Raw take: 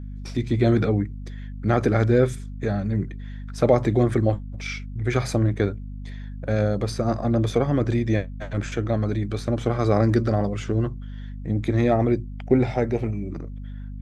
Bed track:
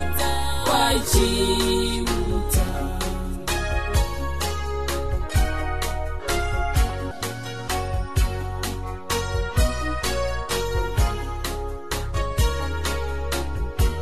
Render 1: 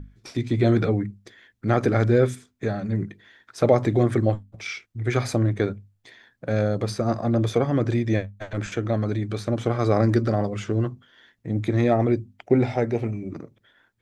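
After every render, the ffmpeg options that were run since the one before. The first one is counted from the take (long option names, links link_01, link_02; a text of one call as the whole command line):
ffmpeg -i in.wav -af "bandreject=frequency=50:width_type=h:width=6,bandreject=frequency=100:width_type=h:width=6,bandreject=frequency=150:width_type=h:width=6,bandreject=frequency=200:width_type=h:width=6,bandreject=frequency=250:width_type=h:width=6" out.wav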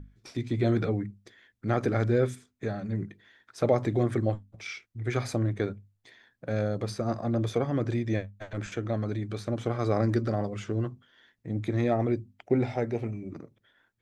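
ffmpeg -i in.wav -af "volume=-6dB" out.wav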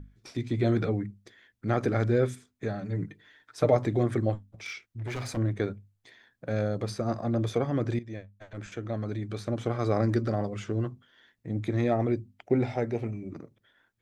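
ffmpeg -i in.wav -filter_complex "[0:a]asettb=1/sr,asplit=3[link_01][link_02][link_03];[link_01]atrim=end=2.824[link_04];[link_02]atrim=start=2.82:end=3.77,asetpts=PTS-STARTPTS,afade=type=in:duration=0.004:curve=qsin,afade=type=out:start_time=0.946:duration=0.004:curve=qsin,aecho=1:1:6.7:0.56,atrim=end_sample=41895[link_05];[link_03]atrim=start=3.766[link_06];[link_04][link_05]acrossfade=duration=0.004:curve1=hsin:curve2=qsin[link_07];[link_07][link_06]acrossfade=duration=0.004:curve1=qsin:curve2=hsin,asettb=1/sr,asplit=3[link_08][link_09][link_10];[link_08]atrim=end=4.484[link_11];[link_09]atrim=start=4.48:end=5.37,asetpts=PTS-STARTPTS,afade=type=in:duration=0.004:curve=qsin,afade=type=out:start_time=0.886:duration=0.004:curve=qsin,asoftclip=type=hard:threshold=-31dB[link_12];[link_10]atrim=start=5.366[link_13];[link_11][link_12]acrossfade=duration=0.004:curve1=hsin:curve2=qsin[link_14];[link_14][link_13]acrossfade=duration=0.004:curve1=qsin:curve2=hsin,asplit=2[link_15][link_16];[link_15]atrim=end=7.99,asetpts=PTS-STARTPTS,afade=type=out:start_time=7.986:duration=0.004:curve=hsin:silence=0.211349[link_17];[link_16]atrim=start=7.99,asetpts=PTS-STARTPTS,afade=type=in:duration=1.47:silence=0.211349[link_18];[link_17][link_18]concat=n=2:v=0:a=1" out.wav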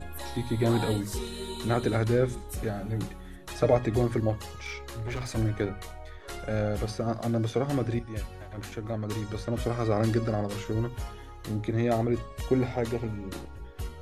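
ffmpeg -i in.wav -i bed.wav -filter_complex "[1:a]volume=-16dB[link_01];[0:a][link_01]amix=inputs=2:normalize=0" out.wav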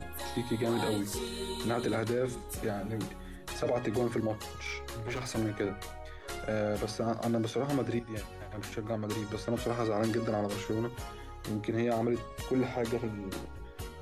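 ffmpeg -i in.wav -filter_complex "[0:a]acrossover=split=170|910|2000[link_01][link_02][link_03][link_04];[link_01]acompressor=threshold=-42dB:ratio=5[link_05];[link_05][link_02][link_03][link_04]amix=inputs=4:normalize=0,alimiter=limit=-21.5dB:level=0:latency=1:release=15" out.wav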